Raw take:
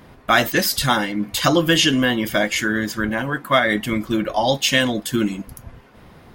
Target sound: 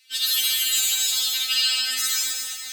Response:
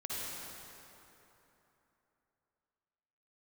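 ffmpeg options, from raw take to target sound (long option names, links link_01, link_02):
-filter_complex "[0:a]highpass=frequency=1100:width=0.5412,highpass=frequency=1100:width=1.3066,areverse,acompressor=mode=upward:threshold=-30dB:ratio=2.5,areverse,asetrate=102753,aresample=44100,asplit=2[link_01][link_02];[link_02]asoftclip=type=tanh:threshold=-20dB,volume=-5dB[link_03];[link_01][link_03]amix=inputs=2:normalize=0[link_04];[1:a]atrim=start_sample=2205[link_05];[link_04][link_05]afir=irnorm=-1:irlink=0,afftfilt=real='re*3.46*eq(mod(b,12),0)':imag='im*3.46*eq(mod(b,12),0)':win_size=2048:overlap=0.75"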